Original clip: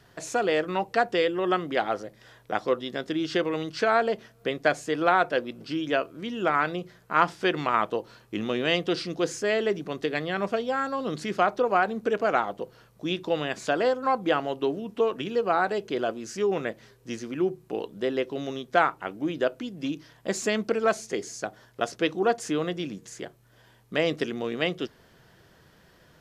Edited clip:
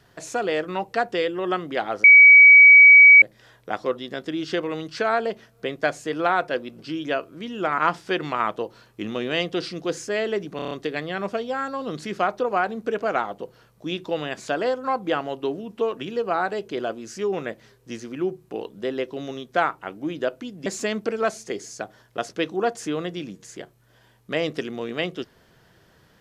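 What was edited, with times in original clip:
2.04 add tone 2270 Hz -6 dBFS 1.18 s
6.6–7.12 cut
9.9 stutter 0.03 s, 6 plays
19.85–20.29 cut

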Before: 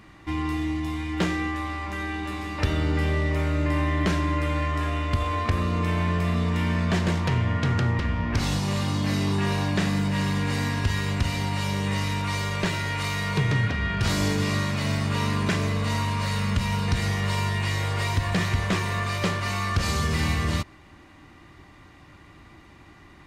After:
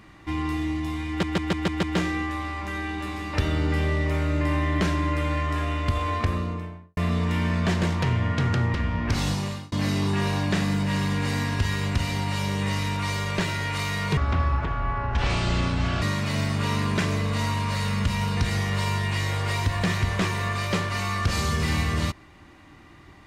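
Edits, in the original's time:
1.08 stutter 0.15 s, 6 plays
5.4–6.22 studio fade out
8.59–8.97 fade out
13.42–14.53 speed 60%

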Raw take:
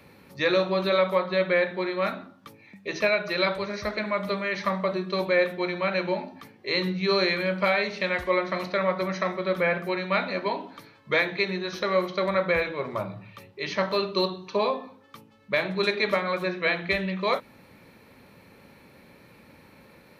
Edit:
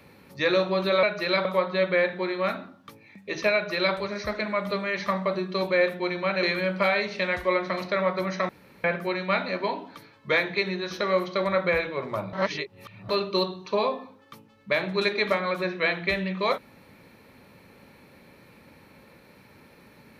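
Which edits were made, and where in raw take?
3.12–3.54 copy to 1.03
6.01–7.25 cut
9.31–9.66 room tone
13.15–13.91 reverse

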